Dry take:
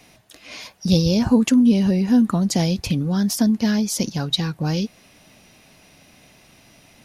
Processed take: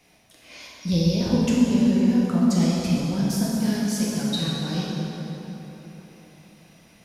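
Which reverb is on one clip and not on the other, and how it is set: plate-style reverb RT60 3.9 s, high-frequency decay 0.6×, DRR -6 dB; trim -10 dB

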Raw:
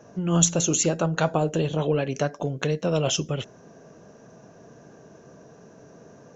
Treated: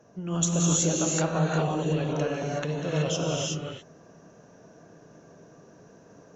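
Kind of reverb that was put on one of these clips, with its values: gated-style reverb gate 400 ms rising, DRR -3.5 dB; trim -7.5 dB

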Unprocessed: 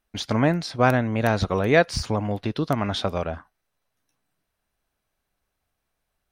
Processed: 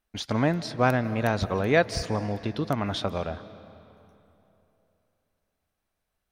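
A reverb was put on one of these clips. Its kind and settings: algorithmic reverb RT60 3.1 s, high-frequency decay 0.7×, pre-delay 120 ms, DRR 15 dB; trim -3.5 dB

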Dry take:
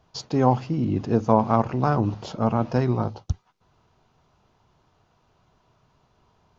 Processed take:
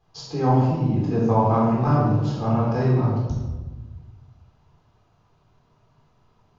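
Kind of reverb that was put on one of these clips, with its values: simulated room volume 730 m³, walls mixed, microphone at 3.9 m; trim -9 dB

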